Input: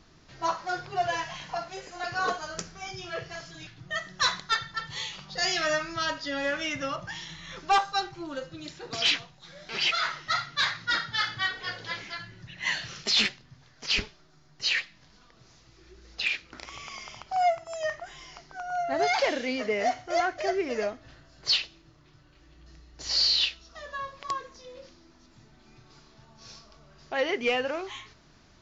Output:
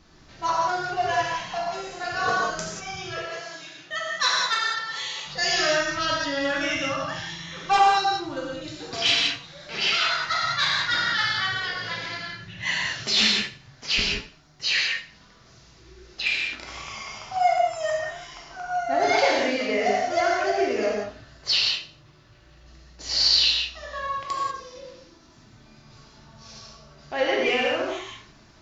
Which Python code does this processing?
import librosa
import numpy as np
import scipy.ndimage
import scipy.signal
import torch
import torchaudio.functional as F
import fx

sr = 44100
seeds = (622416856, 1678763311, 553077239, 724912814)

y = fx.highpass(x, sr, hz=330.0, slope=12, at=(3.13, 5.26))
y = fx.echo_feedback(y, sr, ms=84, feedback_pct=27, wet_db=-16)
y = fx.rev_gated(y, sr, seeds[0], gate_ms=220, shape='flat', drr_db=-3.5)